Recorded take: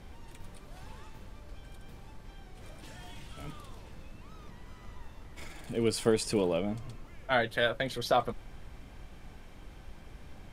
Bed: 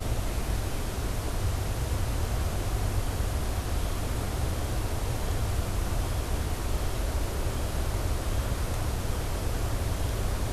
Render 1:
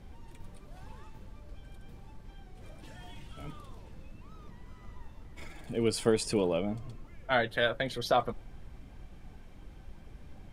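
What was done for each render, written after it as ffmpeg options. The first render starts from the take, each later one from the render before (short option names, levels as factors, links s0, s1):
-af "afftdn=nr=6:nf=-51"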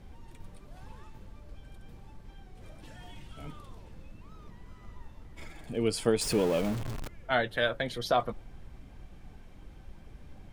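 -filter_complex "[0:a]asettb=1/sr,asplit=3[s0][s1][s2];[s0]atrim=end=6.214[s3];[s1]atrim=start=6.21:end=7.08,asetpts=PTS-STARTPTS,afade=t=in:d=0.004:c=qsin,afade=t=out:st=0.866:d=0.004:c=qsin,aeval=exprs='val(0)+0.5*0.0237*sgn(val(0))':c=same[s4];[s2]atrim=start=7.076[s5];[s3][s4]acrossfade=d=0.004:c1=hsin:c2=qsin[s6];[s6][s5]acrossfade=d=0.004:c1=qsin:c2=hsin"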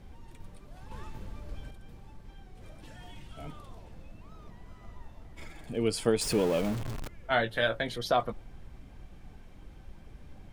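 -filter_complex "[0:a]asettb=1/sr,asplit=3[s0][s1][s2];[s0]atrim=end=0.914[s3];[s1]atrim=start=0.91:end=1.71,asetpts=PTS-STARTPTS,afade=t=in:d=0.004:c=qsin,afade=t=out:st=0.796:d=0.004:c=qsin,acontrast=63[s4];[s2]atrim=start=1.706[s5];[s3][s4]acrossfade=d=0.004:c1=hsin:c2=qsin[s6];[s6][s5]acrossfade=d=0.004:c1=qsin:c2=hsin,asettb=1/sr,asplit=3[s7][s8][s9];[s7]atrim=end=3.324[s10];[s8]atrim=start=3.32:end=5.35,asetpts=PTS-STARTPTS,afade=t=in:d=0.004:c=qsin,afade=t=out:st=2.026:d=0.004:c=qsin,equalizer=f=690:w=4.7:g=8[s11];[s9]atrim=start=5.346[s12];[s10][s11]acrossfade=d=0.004:c1=hsin:c2=qsin[s13];[s13][s12]acrossfade=d=0.004:c1=qsin:c2=hsin,asettb=1/sr,asplit=3[s14][s15][s16];[s14]atrim=end=7.224[s17];[s15]atrim=start=7.22:end=7.96,asetpts=PTS-STARTPTS,afade=t=in:d=0.004:c=qsin,afade=t=out:st=0.736:d=0.004:c=qsin,asplit=2[s18][s19];[s19]adelay=18,volume=0.447[s20];[s18][s20]amix=inputs=2:normalize=0,atrim=end_sample=32634[s21];[s16]atrim=start=7.956[s22];[s17][s21]acrossfade=d=0.004:c1=hsin:c2=qsin[s23];[s23][s22]acrossfade=d=0.004:c1=qsin:c2=hsin"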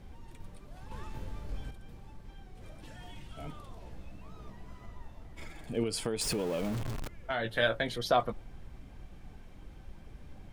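-filter_complex "[0:a]asettb=1/sr,asplit=3[s0][s1][s2];[s0]atrim=end=1.084[s3];[s1]atrim=start=1.08:end=1.71,asetpts=PTS-STARTPTS,afade=t=in:d=0.004:c=qsin,afade=t=out:st=0.626:d=0.004:c=qsin,asplit=2[s4][s5];[s5]adelay=23,volume=0.631[s6];[s4][s6]amix=inputs=2:normalize=0,atrim=end_sample=27783[s7];[s2]atrim=start=1.706[s8];[s3][s7]acrossfade=d=0.004:c1=hsin:c2=qsin[s9];[s9][s8]acrossfade=d=0.004:c1=qsin:c2=hsin,asettb=1/sr,asplit=3[s10][s11][s12];[s10]atrim=end=3.794[s13];[s11]atrim=start=3.79:end=4.86,asetpts=PTS-STARTPTS,afade=t=in:d=0.004:c=qsin,afade=t=out:st=1.066:d=0.004:c=qsin,asplit=2[s14][s15];[s15]adelay=16,volume=0.708[s16];[s14][s16]amix=inputs=2:normalize=0,atrim=end_sample=47187[s17];[s12]atrim=start=4.856[s18];[s13][s17]acrossfade=d=0.004:c1=hsin:c2=qsin[s19];[s19][s18]acrossfade=d=0.004:c1=qsin:c2=hsin,asettb=1/sr,asplit=3[s20][s21][s22];[s20]atrim=end=5.834[s23];[s21]atrim=start=5.83:end=7.45,asetpts=PTS-STARTPTS,afade=t=in:d=0.004:c=qsin,afade=t=out:st=1.616:d=0.004:c=qsin,acompressor=threshold=0.0398:ratio=6:attack=3.2:release=140:knee=1:detection=peak[s24];[s22]atrim=start=7.446[s25];[s23][s24]acrossfade=d=0.004:c1=hsin:c2=qsin[s26];[s26][s25]acrossfade=d=0.004:c1=qsin:c2=hsin"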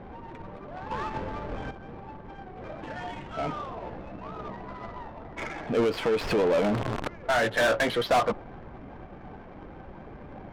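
-filter_complex "[0:a]asplit=2[s0][s1];[s1]highpass=f=720:p=1,volume=22.4,asoftclip=type=tanh:threshold=0.211[s2];[s0][s2]amix=inputs=2:normalize=0,lowpass=f=1800:p=1,volume=0.501,adynamicsmooth=sensitivity=4:basefreq=1000"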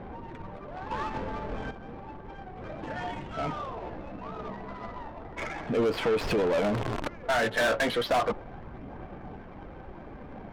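-af "aphaser=in_gain=1:out_gain=1:delay=4.6:decay=0.22:speed=0.33:type=sinusoidal,asoftclip=type=tanh:threshold=0.106"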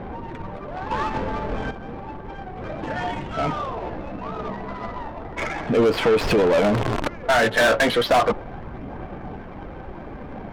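-af "volume=2.51"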